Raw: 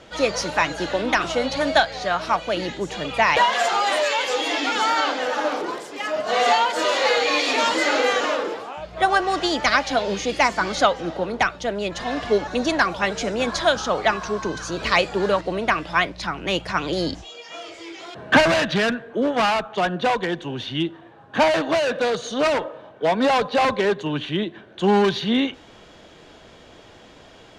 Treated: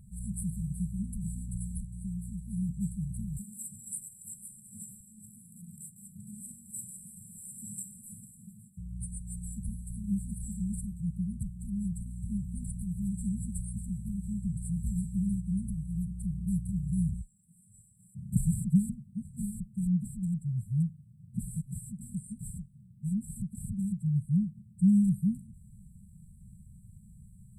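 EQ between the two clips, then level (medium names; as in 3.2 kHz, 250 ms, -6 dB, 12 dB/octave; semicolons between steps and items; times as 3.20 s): brick-wall FIR band-stop 210–7600 Hz; +4.0 dB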